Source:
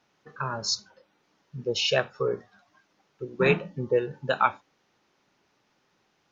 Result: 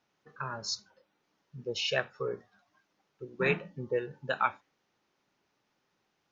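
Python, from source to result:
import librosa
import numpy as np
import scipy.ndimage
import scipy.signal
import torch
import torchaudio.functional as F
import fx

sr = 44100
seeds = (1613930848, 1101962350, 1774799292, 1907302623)

y = fx.dynamic_eq(x, sr, hz=1900.0, q=1.9, threshold_db=-43.0, ratio=4.0, max_db=6)
y = y * librosa.db_to_amplitude(-7.5)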